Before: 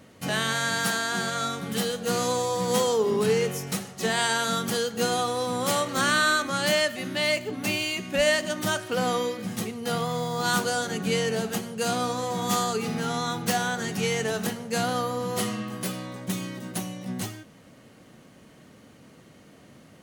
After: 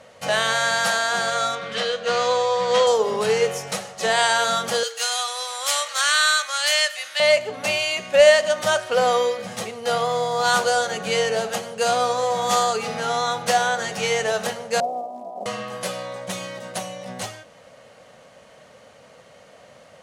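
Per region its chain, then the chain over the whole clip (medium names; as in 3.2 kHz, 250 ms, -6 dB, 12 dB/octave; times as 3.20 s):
1.55–2.87 s: low-pass 3.8 kHz + tilt shelf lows -4 dB, about 790 Hz + band-stop 820 Hz, Q 5.4
4.83–7.20 s: Bessel high-pass 1.6 kHz + tilt EQ +1.5 dB/octave
14.80–15.46 s: comb filter that takes the minimum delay 1 ms + elliptic band-pass 230–710 Hz, stop band 50 dB + short-mantissa float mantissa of 4-bit
whole clip: low-pass 8.8 kHz 12 dB/octave; resonant low shelf 420 Hz -8.5 dB, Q 3; de-hum 152.7 Hz, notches 3; trim +5 dB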